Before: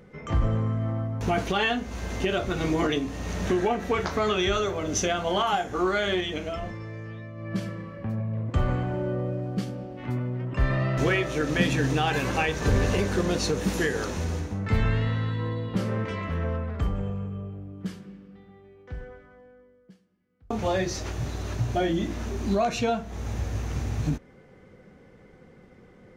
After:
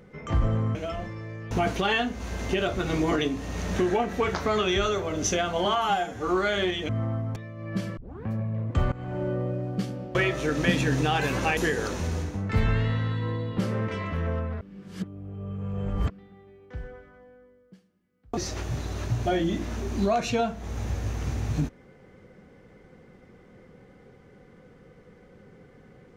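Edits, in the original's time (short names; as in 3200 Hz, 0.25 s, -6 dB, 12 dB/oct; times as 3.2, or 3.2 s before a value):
0.75–1.22 swap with 6.39–7.15
5.36–5.78 stretch 1.5×
7.76 tape start 0.30 s
8.71–9.02 fade in, from -20 dB
9.94–11.07 cut
12.49–13.74 cut
16.78–18.27 reverse
20.54–20.86 cut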